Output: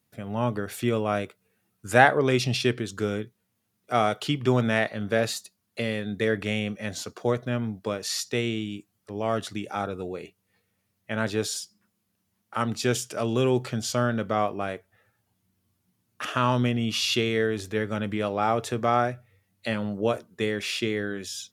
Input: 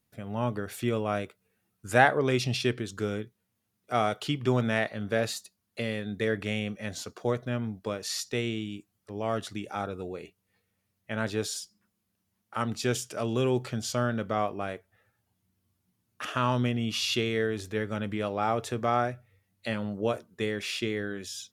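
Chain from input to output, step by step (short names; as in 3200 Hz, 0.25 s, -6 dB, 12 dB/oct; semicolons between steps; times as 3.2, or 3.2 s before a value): HPF 77 Hz; gain +3.5 dB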